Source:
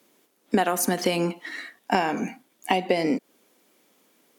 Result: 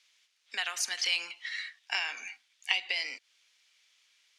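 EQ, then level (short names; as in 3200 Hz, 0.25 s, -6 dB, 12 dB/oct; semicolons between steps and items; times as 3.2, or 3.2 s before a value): Butterworth band-pass 3600 Hz, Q 0.91; +3.0 dB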